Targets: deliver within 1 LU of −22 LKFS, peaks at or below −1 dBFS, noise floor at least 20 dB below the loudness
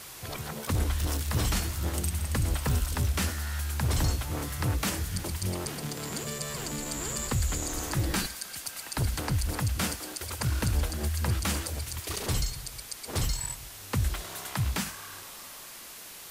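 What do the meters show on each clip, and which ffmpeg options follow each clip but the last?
background noise floor −45 dBFS; target noise floor −51 dBFS; integrated loudness −31.0 LKFS; sample peak −16.5 dBFS; target loudness −22.0 LKFS
→ -af "afftdn=noise_reduction=6:noise_floor=-45"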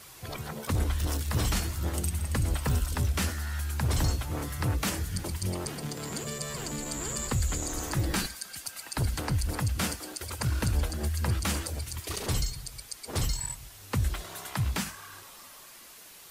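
background noise floor −50 dBFS; target noise floor −52 dBFS
→ -af "afftdn=noise_reduction=6:noise_floor=-50"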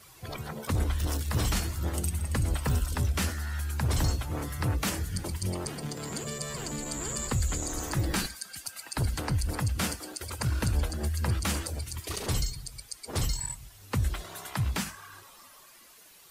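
background noise floor −54 dBFS; integrated loudness −31.5 LKFS; sample peak −17.0 dBFS; target loudness −22.0 LKFS
→ -af "volume=9.5dB"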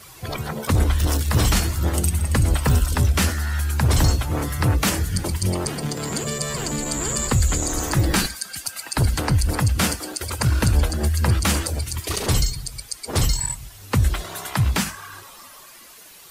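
integrated loudness −22.0 LKFS; sample peak −7.5 dBFS; background noise floor −44 dBFS

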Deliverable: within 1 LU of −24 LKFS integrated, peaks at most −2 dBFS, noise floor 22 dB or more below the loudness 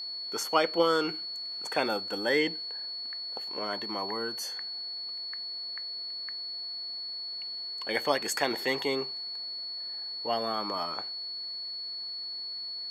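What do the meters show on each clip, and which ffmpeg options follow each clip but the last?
interfering tone 4,400 Hz; level of the tone −35 dBFS; integrated loudness −31.5 LKFS; sample peak −10.5 dBFS; target loudness −24.0 LKFS
→ -af "bandreject=frequency=4400:width=30"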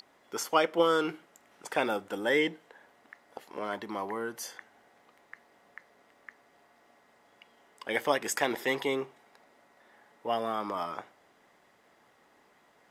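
interfering tone none found; integrated loudness −31.0 LKFS; sample peak −11.0 dBFS; target loudness −24.0 LKFS
→ -af "volume=7dB"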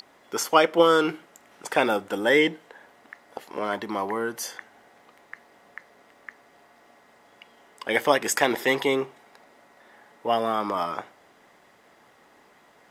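integrated loudness −24.0 LKFS; sample peak −4.0 dBFS; background noise floor −58 dBFS

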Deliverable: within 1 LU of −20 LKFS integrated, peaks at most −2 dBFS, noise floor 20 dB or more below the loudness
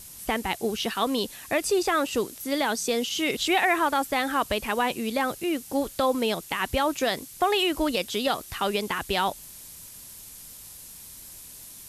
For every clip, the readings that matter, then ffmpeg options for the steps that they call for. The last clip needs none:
background noise floor −45 dBFS; target noise floor −46 dBFS; integrated loudness −26.0 LKFS; sample peak −10.5 dBFS; target loudness −20.0 LKFS
→ -af "afftdn=noise_reduction=6:noise_floor=-45"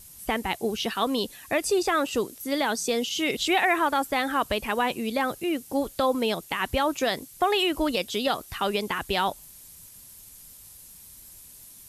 background noise floor −48 dBFS; integrated loudness −26.0 LKFS; sample peak −11.0 dBFS; target loudness −20.0 LKFS
→ -af "volume=6dB"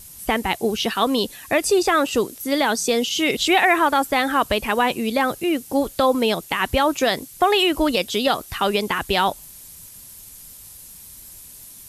integrated loudness −20.0 LKFS; sample peak −5.0 dBFS; background noise floor −42 dBFS

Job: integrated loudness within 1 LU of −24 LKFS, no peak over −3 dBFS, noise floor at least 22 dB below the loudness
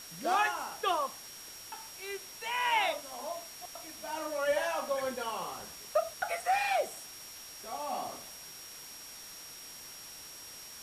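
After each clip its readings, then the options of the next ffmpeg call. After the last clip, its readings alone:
interfering tone 5,600 Hz; level of the tone −49 dBFS; background noise floor −48 dBFS; target noise floor −57 dBFS; integrated loudness −35.0 LKFS; sample peak −16.5 dBFS; target loudness −24.0 LKFS
→ -af "bandreject=frequency=5600:width=30"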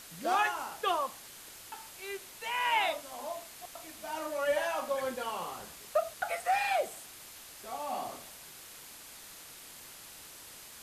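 interfering tone none found; background noise floor −50 dBFS; target noise floor −56 dBFS
→ -af "afftdn=noise_reduction=6:noise_floor=-50"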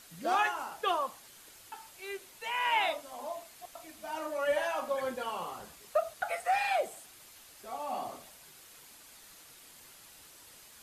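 background noise floor −55 dBFS; target noise floor −56 dBFS
→ -af "afftdn=noise_reduction=6:noise_floor=-55"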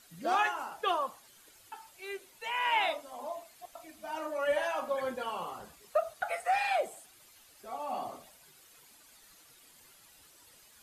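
background noise floor −60 dBFS; integrated loudness −33.5 LKFS; sample peak −16.5 dBFS; target loudness −24.0 LKFS
→ -af "volume=9.5dB"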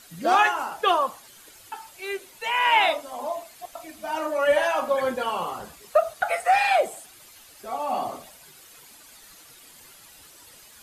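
integrated loudness −24.0 LKFS; sample peak −7.0 dBFS; background noise floor −50 dBFS

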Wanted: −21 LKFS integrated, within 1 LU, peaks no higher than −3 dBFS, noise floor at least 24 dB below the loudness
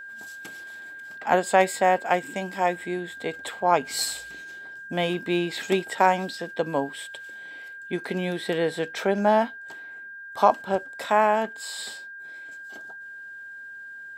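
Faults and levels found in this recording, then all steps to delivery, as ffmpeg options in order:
interfering tone 1,600 Hz; level of the tone −38 dBFS; integrated loudness −25.0 LKFS; sample peak −5.0 dBFS; target loudness −21.0 LKFS
→ -af "bandreject=frequency=1600:width=30"
-af "volume=4dB,alimiter=limit=-3dB:level=0:latency=1"

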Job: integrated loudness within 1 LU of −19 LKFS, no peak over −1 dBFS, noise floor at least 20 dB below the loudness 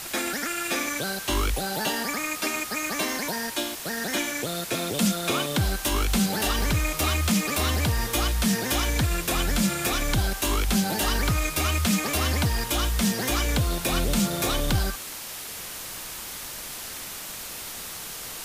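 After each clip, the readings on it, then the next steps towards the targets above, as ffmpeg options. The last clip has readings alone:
background noise floor −37 dBFS; target noise floor −46 dBFS; integrated loudness −26.0 LKFS; sample peak −11.5 dBFS; target loudness −19.0 LKFS
→ -af "afftdn=noise_reduction=9:noise_floor=-37"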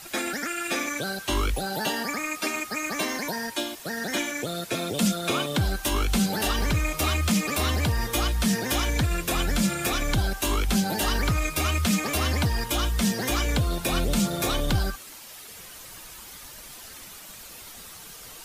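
background noise floor −44 dBFS; target noise floor −46 dBFS
→ -af "afftdn=noise_reduction=6:noise_floor=-44"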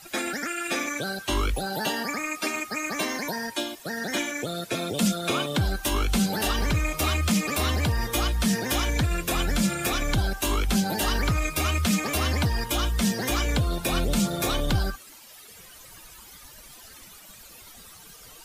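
background noise floor −48 dBFS; integrated loudness −26.0 LKFS; sample peak −12.0 dBFS; target loudness −19.0 LKFS
→ -af "volume=7dB"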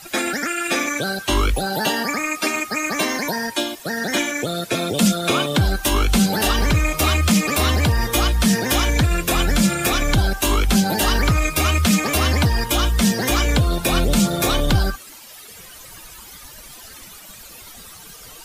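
integrated loudness −19.0 LKFS; sample peak −5.0 dBFS; background noise floor −41 dBFS

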